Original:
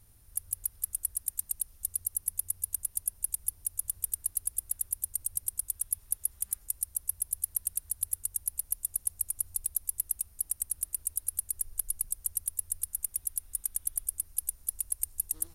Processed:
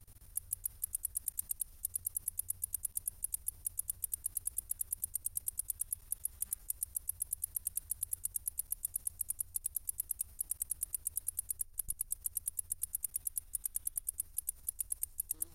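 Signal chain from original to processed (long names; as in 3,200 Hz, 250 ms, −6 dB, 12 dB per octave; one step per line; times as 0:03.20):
output level in coarse steps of 20 dB
level +5 dB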